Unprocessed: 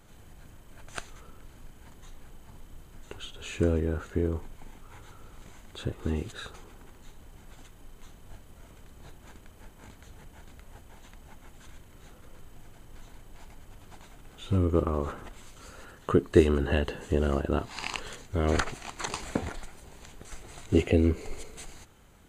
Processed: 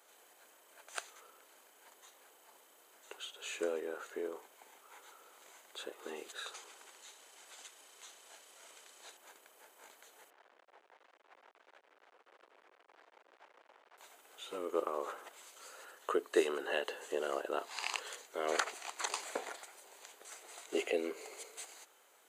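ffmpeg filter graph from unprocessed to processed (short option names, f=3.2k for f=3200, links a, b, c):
-filter_complex "[0:a]asettb=1/sr,asplit=3[a][b][c];[a]atrim=end=6.464[d];[b]atrim=start=6.46:end=9.17,asetpts=PTS-STARTPTS,afade=t=in:d=0.004:c=qsin,afade=t=out:st=2.706:d=0.004:c=qsin,lowpass=8k,highshelf=f=2.1k:g=10.5[e];[c]atrim=start=9.166[f];[d][e]acrossfade=d=0.004:c1=hsin:c2=qsin[g];[g][f]acrossfade=d=0.004:c1=qsin:c2=hsin,asettb=1/sr,asplit=3[h][i][j];[h]atrim=end=10.304[k];[i]atrim=start=10.3:end=13.98,asetpts=PTS-STARTPTS,afade=t=in:d=0.004:c=qsin,afade=t=out:st=3.676:d=0.004:c=qsin,aeval=exprs='(mod(106*val(0)+1,2)-1)/106':c=same,acrusher=bits=6:dc=4:mix=0:aa=0.000001,highpass=200,lowpass=2k[l];[j]atrim=start=13.976[m];[k][l]acrossfade=d=0.004:c1=hsin:c2=qsin[n];[n][m]acrossfade=d=0.004:c1=qsin:c2=hsin,highpass=f=440:w=0.5412,highpass=f=440:w=1.3066,highshelf=f=7.7k:g=6,volume=-4dB"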